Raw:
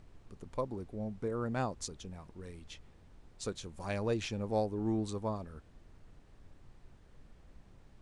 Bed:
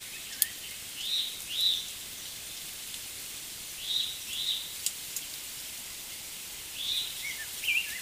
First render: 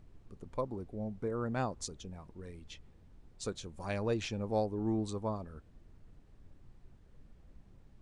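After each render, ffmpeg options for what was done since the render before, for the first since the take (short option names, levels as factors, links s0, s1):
-af "afftdn=nr=6:nf=-60"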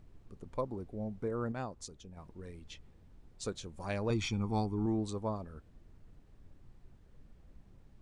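-filter_complex "[0:a]asettb=1/sr,asplit=3[s0][s1][s2];[s0]atrim=end=4.104[s3];[s1]atrim=start=4.1:end=4.86,asetpts=PTS-STARTPTS,afade=t=in:d=0.004:c=qsin,afade=t=out:st=0.756:d=0.004:c=qsin,aecho=1:1:0.9:0.85,atrim=end_sample=33516[s4];[s2]atrim=start=4.856[s5];[s3][s4]acrossfade=d=0.004:c1=hsin:c2=qsin[s6];[s6][s5]acrossfade=d=0.004:c1=qsin:c2=hsin,asplit=3[s7][s8][s9];[s7]atrim=end=1.522[s10];[s8]atrim=start=1.518:end=2.172,asetpts=PTS-STARTPTS,volume=0.531[s11];[s9]atrim=start=2.168[s12];[s10][s11]acrossfade=d=0.004:c1=hsin:c2=hsin[s13];[s13][s12]acrossfade=d=0.004:c1=hsin:c2=hsin"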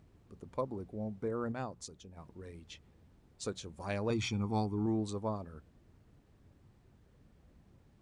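-af "highpass=59,bandreject=f=60:t=h:w=6,bandreject=f=120:t=h:w=6,bandreject=f=180:t=h:w=6"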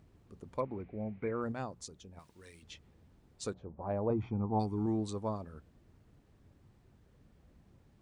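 -filter_complex "[0:a]asettb=1/sr,asplit=3[s0][s1][s2];[s0]atrim=end=0.604[s3];[s1]atrim=start=0.6:end=1.42,asetpts=PTS-STARTPTS,afade=t=in:d=0.004:c=qsin,afade=t=out:st=0.816:d=0.004:c=qsin,lowpass=f=2300:t=q:w=5.9[s4];[s2]atrim=start=1.416[s5];[s3][s4]acrossfade=d=0.004:c1=hsin:c2=qsin[s6];[s6][s5]acrossfade=d=0.004:c1=qsin:c2=hsin,asettb=1/sr,asplit=3[s7][s8][s9];[s7]atrim=end=2.194[s10];[s8]atrim=start=2.19:end=2.63,asetpts=PTS-STARTPTS,afade=t=in:d=0.004:c=qsin,afade=t=out:st=0.436:d=0.004:c=qsin,tiltshelf=f=1400:g=-9.5[s11];[s9]atrim=start=2.626[s12];[s10][s11]acrossfade=d=0.004:c1=hsin:c2=qsin[s13];[s13][s12]acrossfade=d=0.004:c1=qsin:c2=hsin,asplit=3[s14][s15][s16];[s14]afade=t=out:st=3.53:d=0.02[s17];[s15]lowpass=f=810:t=q:w=1.5,afade=t=in:st=3.53:d=0.02,afade=t=out:st=4.59:d=0.02[s18];[s16]afade=t=in:st=4.59:d=0.02[s19];[s17][s18][s19]amix=inputs=3:normalize=0"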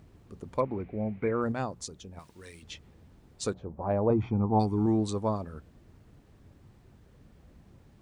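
-af "volume=2.24"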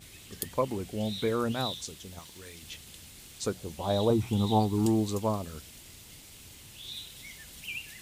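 -filter_complex "[1:a]volume=0.316[s0];[0:a][s0]amix=inputs=2:normalize=0"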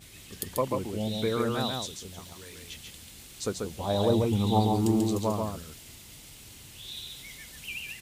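-af "aecho=1:1:139:0.668"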